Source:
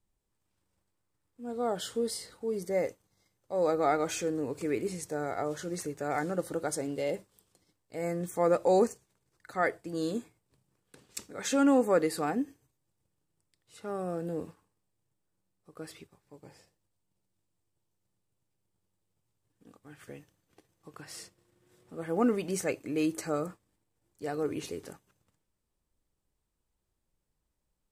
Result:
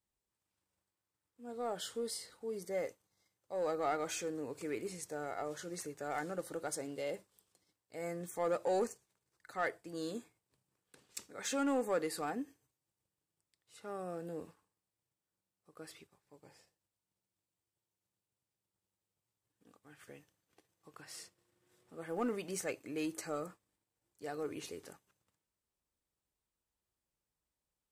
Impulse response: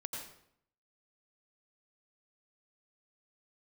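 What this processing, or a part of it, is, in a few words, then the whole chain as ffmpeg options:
parallel distortion: -filter_complex "[0:a]highpass=40,lowshelf=f=430:g=-7,asplit=2[a][b];[b]asoftclip=type=hard:threshold=-29.5dB,volume=-5.5dB[c];[a][c]amix=inputs=2:normalize=0,volume=-8dB"

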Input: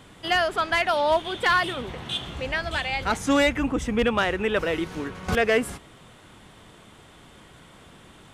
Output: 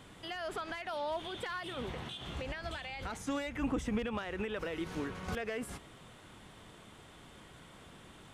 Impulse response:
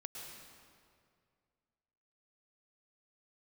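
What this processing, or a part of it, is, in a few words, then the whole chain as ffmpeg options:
de-esser from a sidechain: -filter_complex "[0:a]asplit=2[a][b];[b]highpass=f=4.3k:p=1,apad=whole_len=367544[c];[a][c]sidechaincompress=threshold=-41dB:ratio=4:attack=1.1:release=73,volume=-5dB"

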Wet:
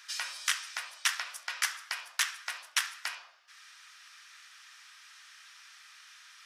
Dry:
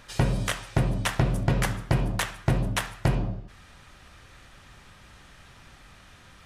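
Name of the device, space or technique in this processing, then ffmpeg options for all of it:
headphones lying on a table: -af "highpass=f=1.3k:w=0.5412,highpass=f=1.3k:w=1.3066,equalizer=f=5.4k:t=o:w=0.51:g=7.5"

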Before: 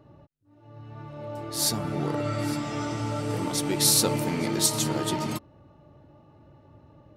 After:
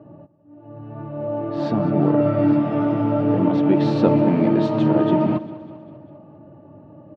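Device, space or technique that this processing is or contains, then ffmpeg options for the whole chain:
bass cabinet: -af "highpass=110,highpass=86,equalizer=f=190:t=q:w=4:g=7,equalizer=f=300:t=q:w=4:g=7,equalizer=f=630:t=q:w=4:g=8,equalizer=f=1.4k:t=q:w=4:g=-3,equalizer=f=2.1k:t=q:w=4:g=-9,lowpass=f=2.4k:w=0.5412,lowpass=f=2.4k:w=1.3066,lowshelf=f=180:g=4.5,aecho=1:1:199|398|597|796|995:0.141|0.0805|0.0459|0.0262|0.0149,volume=5.5dB"

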